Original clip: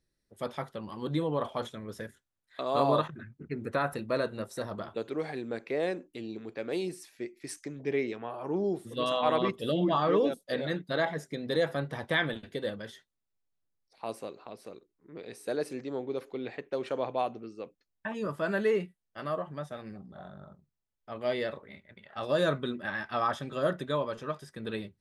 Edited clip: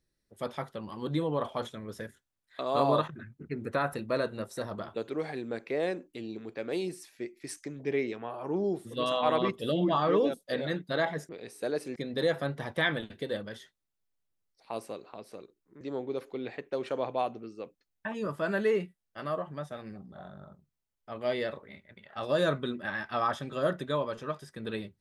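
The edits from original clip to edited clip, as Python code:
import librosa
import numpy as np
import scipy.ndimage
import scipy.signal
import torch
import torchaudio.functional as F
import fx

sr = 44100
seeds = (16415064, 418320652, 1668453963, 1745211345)

y = fx.edit(x, sr, fx.move(start_s=15.14, length_s=0.67, to_s=11.29), tone=tone)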